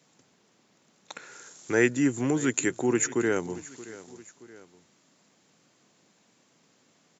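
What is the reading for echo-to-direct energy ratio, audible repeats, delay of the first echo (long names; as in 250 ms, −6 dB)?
−17.0 dB, 2, 625 ms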